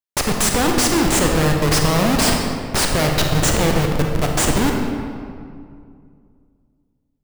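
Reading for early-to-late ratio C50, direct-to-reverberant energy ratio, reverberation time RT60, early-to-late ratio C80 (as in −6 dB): 2.5 dB, 1.0 dB, 2.3 s, 4.0 dB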